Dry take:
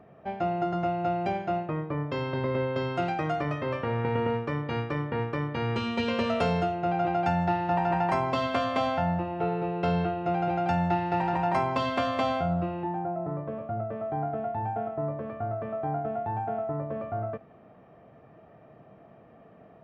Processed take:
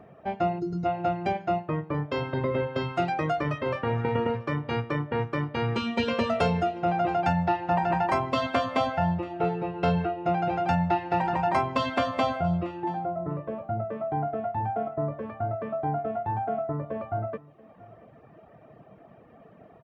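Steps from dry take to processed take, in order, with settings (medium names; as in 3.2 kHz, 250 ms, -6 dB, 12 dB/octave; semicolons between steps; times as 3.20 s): time-frequency box 0.60–0.85 s, 510–3700 Hz -15 dB; reverb removal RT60 0.93 s; on a send: delay 682 ms -21.5 dB; on the sum: trim +3.5 dB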